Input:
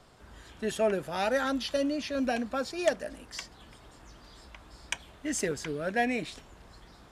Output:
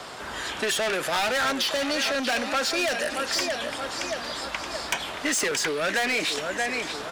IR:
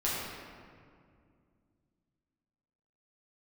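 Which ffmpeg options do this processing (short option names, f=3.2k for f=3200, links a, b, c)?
-filter_complex "[0:a]aecho=1:1:625|1250|1875|2500:0.178|0.0782|0.0344|0.0151,asplit=2[a][b];[b]highpass=f=720:p=1,volume=29dB,asoftclip=type=tanh:threshold=-12dB[c];[a][c]amix=inputs=2:normalize=0,lowpass=f=7.2k:p=1,volume=-6dB,acrossover=split=280|1300[d][e][f];[d]acompressor=threshold=-42dB:ratio=4[g];[e]acompressor=threshold=-29dB:ratio=4[h];[f]acompressor=threshold=-24dB:ratio=4[i];[g][h][i]amix=inputs=3:normalize=0"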